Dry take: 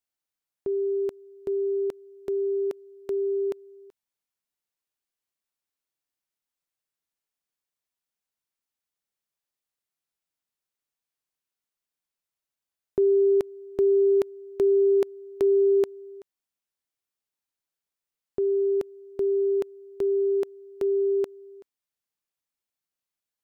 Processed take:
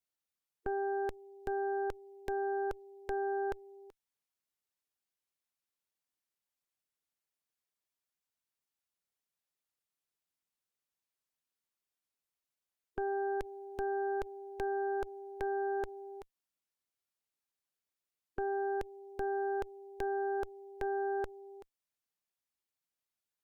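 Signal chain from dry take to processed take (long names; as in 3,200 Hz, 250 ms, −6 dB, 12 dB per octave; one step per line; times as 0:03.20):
brickwall limiter −28 dBFS, peak gain reduction 11.5 dB
harmonic and percussive parts rebalanced harmonic −4 dB
harmonic generator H 3 −26 dB, 4 −7 dB, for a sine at −29.5 dBFS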